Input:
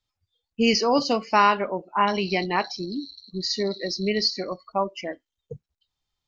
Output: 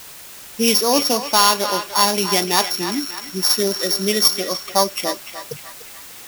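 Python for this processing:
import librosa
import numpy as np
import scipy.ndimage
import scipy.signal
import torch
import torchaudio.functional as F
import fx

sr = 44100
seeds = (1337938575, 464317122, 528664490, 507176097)

p1 = np.r_[np.sort(x[:len(x) // 8 * 8].reshape(-1, 8), axis=1).ravel(), x[len(x) // 8 * 8:]]
p2 = scipy.signal.sosfilt(scipy.signal.butter(2, 170.0, 'highpass', fs=sr, output='sos'), p1)
p3 = fx.high_shelf(p2, sr, hz=4100.0, db=7.5)
p4 = fx.notch(p3, sr, hz=5100.0, q=24.0)
p5 = fx.rider(p4, sr, range_db=5, speed_s=0.5)
p6 = p4 + (p5 * librosa.db_to_amplitude(1.0))
p7 = fx.quant_dither(p6, sr, seeds[0], bits=6, dither='triangular')
p8 = p7 + fx.echo_banded(p7, sr, ms=296, feedback_pct=57, hz=1800.0, wet_db=-7.0, dry=0)
y = p8 * librosa.db_to_amplitude(-2.5)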